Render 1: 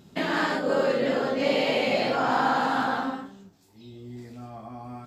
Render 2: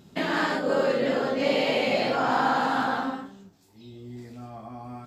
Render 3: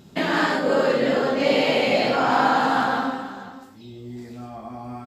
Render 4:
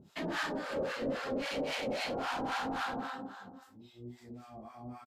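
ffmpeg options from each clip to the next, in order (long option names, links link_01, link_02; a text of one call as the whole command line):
ffmpeg -i in.wav -af anull out.wav
ffmpeg -i in.wav -af "aecho=1:1:95|489:0.282|0.168,volume=4dB" out.wav
ffmpeg -i in.wav -filter_complex "[0:a]asoftclip=type=hard:threshold=-21dB,acrossover=split=770[link_01][link_02];[link_01]aeval=exprs='val(0)*(1-1/2+1/2*cos(2*PI*3.7*n/s))':channel_layout=same[link_03];[link_02]aeval=exprs='val(0)*(1-1/2-1/2*cos(2*PI*3.7*n/s))':channel_layout=same[link_04];[link_03][link_04]amix=inputs=2:normalize=0,aresample=32000,aresample=44100,volume=-7dB" out.wav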